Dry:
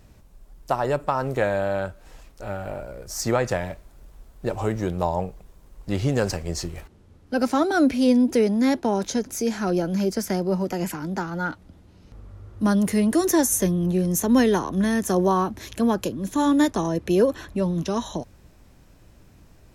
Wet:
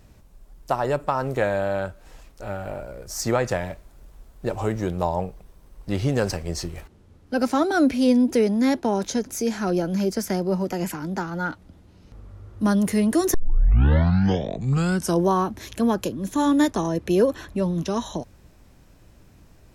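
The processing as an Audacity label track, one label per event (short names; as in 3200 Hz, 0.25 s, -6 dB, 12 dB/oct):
5.080000	6.720000	notch 7000 Hz
13.340000	13.340000	tape start 1.94 s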